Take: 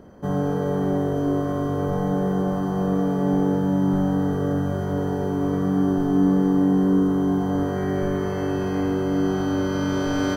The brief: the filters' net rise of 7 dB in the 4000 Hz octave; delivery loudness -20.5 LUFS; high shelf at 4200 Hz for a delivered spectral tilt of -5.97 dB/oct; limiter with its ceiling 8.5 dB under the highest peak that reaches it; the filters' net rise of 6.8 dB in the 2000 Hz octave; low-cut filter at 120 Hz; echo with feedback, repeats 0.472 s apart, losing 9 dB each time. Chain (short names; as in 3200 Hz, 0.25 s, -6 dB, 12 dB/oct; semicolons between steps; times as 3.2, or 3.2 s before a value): HPF 120 Hz; bell 2000 Hz +9 dB; bell 4000 Hz +7.5 dB; high shelf 4200 Hz -3.5 dB; limiter -18 dBFS; feedback echo 0.472 s, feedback 35%, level -9 dB; gain +4.5 dB